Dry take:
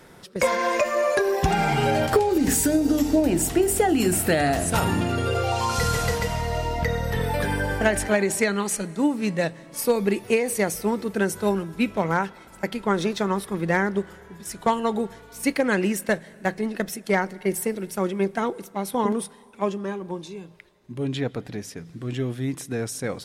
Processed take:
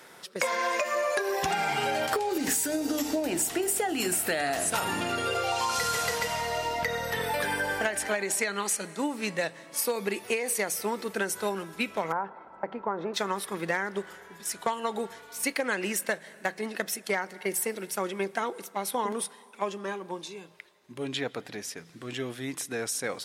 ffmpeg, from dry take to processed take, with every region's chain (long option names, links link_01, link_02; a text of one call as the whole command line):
ffmpeg -i in.wav -filter_complex "[0:a]asettb=1/sr,asplit=3[link_01][link_02][link_03];[link_01]atrim=end=12.124[link_04];[link_02]atrim=start=12.12:end=13.14,asetpts=PTS-STARTPTS,afade=type=in:duration=0.004:curve=qsin,afade=type=out:start_time=1.016:duration=0.004:curve=qsin,acompressor=threshold=-24dB:ratio=2:attack=3.2:release=140:knee=1:detection=peak,lowpass=frequency=950:width_type=q:width=1.6[link_05];[link_03]atrim=start=13.136[link_06];[link_04][link_05]acrossfade=duration=0.004:curve1=hsin:curve2=qsin[link_07];[link_07][link_06]acrossfade=duration=0.004:curve1=qsin:curve2=hsin,highpass=frequency=840:poles=1,acompressor=threshold=-27dB:ratio=6,volume=2.5dB" out.wav